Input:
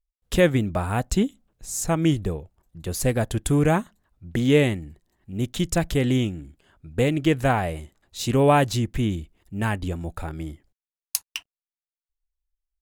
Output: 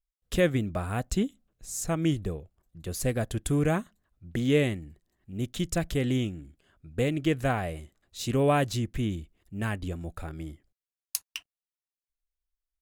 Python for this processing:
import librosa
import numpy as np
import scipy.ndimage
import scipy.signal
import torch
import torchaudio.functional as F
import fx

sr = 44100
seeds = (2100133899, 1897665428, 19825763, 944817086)

y = fx.peak_eq(x, sr, hz=890.0, db=-8.0, octaves=0.22)
y = F.gain(torch.from_numpy(y), -5.5).numpy()